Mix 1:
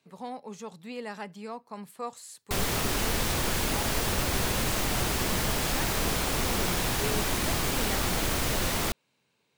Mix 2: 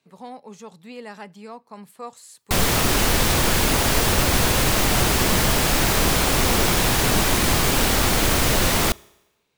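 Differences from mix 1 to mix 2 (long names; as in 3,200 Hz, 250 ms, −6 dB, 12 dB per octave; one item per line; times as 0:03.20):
speech: send on
background +9.0 dB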